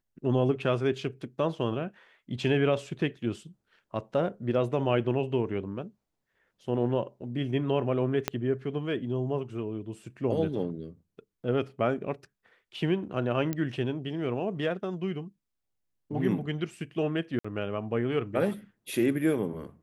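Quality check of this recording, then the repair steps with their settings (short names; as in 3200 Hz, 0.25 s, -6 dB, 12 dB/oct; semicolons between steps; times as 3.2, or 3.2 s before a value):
8.28 pop -10 dBFS
13.53 pop -17 dBFS
17.39–17.45 gap 55 ms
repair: de-click; interpolate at 17.39, 55 ms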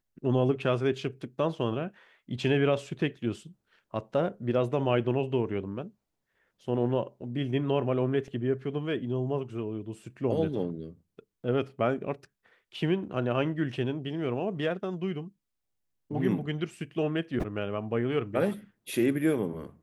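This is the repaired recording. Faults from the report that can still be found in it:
8.28 pop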